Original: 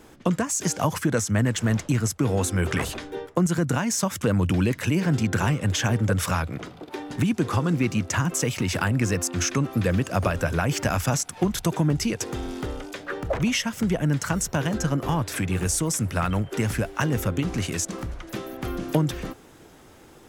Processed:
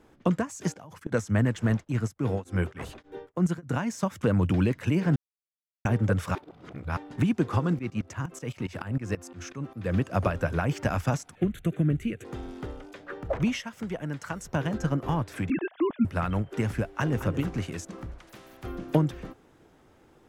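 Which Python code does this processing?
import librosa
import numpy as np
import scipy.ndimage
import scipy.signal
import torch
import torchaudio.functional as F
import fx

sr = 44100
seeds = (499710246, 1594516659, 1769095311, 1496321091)

y = fx.level_steps(x, sr, step_db=19, at=(0.72, 1.12))
y = fx.tremolo_abs(y, sr, hz=3.4, at=(1.71, 3.76))
y = fx.tremolo_shape(y, sr, shape='saw_up', hz=fx.line((7.73, 9.5), (9.94, 4.3)), depth_pct=85, at=(7.73, 9.94), fade=0.02)
y = fx.fixed_phaser(y, sr, hz=2200.0, stages=4, at=(11.35, 12.25))
y = fx.low_shelf(y, sr, hz=320.0, db=-8.5, at=(13.6, 14.45))
y = fx.sine_speech(y, sr, at=(15.5, 16.05))
y = fx.echo_throw(y, sr, start_s=16.84, length_s=0.42, ms=220, feedback_pct=30, wet_db=-8.5)
y = fx.spectral_comp(y, sr, ratio=2.0, at=(18.18, 18.64))
y = fx.edit(y, sr, fx.silence(start_s=5.16, length_s=0.69),
    fx.reverse_span(start_s=6.35, length_s=0.62), tone=tone)
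y = fx.high_shelf(y, sr, hz=3700.0, db=-10.5)
y = fx.upward_expand(y, sr, threshold_db=-33.0, expansion=1.5)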